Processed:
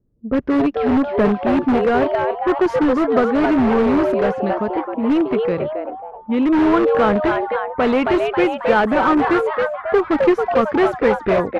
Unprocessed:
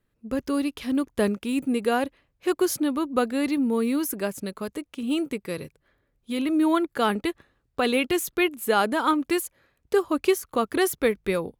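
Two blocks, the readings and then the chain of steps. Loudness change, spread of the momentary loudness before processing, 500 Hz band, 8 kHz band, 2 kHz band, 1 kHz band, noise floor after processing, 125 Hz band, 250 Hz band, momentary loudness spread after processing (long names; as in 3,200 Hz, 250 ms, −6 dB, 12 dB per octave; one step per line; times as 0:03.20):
+8.0 dB, 10 LU, +9.5 dB, below −15 dB, +7.0 dB, +9.5 dB, −35 dBFS, +10.5 dB, +8.0 dB, 6 LU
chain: on a send: echo with shifted repeats 271 ms, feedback 52%, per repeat +150 Hz, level −5.5 dB
on the sum: harmonic generator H 4 −36 dB, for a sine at −8 dBFS
in parallel at −5 dB: wrap-around overflow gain 19 dB
on the sum: low-pass that shuts in the quiet parts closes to 380 Hz, open at −18 dBFS
low-pass filter 1,700 Hz 12 dB per octave
wow of a warped record 45 rpm, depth 100 cents
level +6 dB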